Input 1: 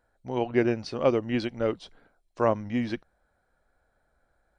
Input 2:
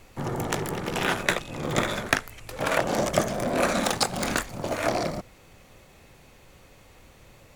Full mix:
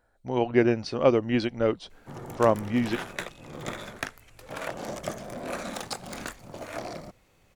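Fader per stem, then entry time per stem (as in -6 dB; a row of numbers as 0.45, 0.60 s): +2.5, -10.5 dB; 0.00, 1.90 s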